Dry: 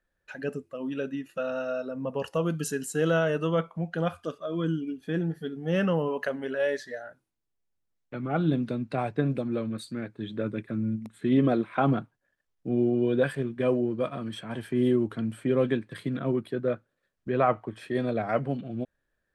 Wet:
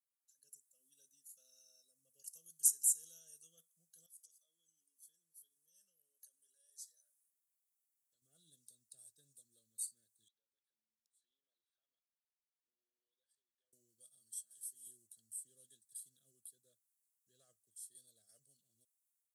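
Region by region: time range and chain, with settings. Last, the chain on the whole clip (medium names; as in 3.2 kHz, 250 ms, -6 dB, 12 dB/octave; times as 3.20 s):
4.06–8.22 s: compression 4:1, threshold -37 dBFS + bass shelf 260 Hz -9.5 dB
10.28–13.73 s: high-pass 710 Hz + compression 3:1, threshold -50 dBFS + distance through air 270 m
14.35–14.87 s: high-pass 490 Hz 6 dB/octave + doubling 15 ms -4.5 dB
whole clip: inverse Chebyshev high-pass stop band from 2.5 kHz, stop band 60 dB; comb 1.8 ms, depth 44%; level rider gain up to 10 dB; trim -1 dB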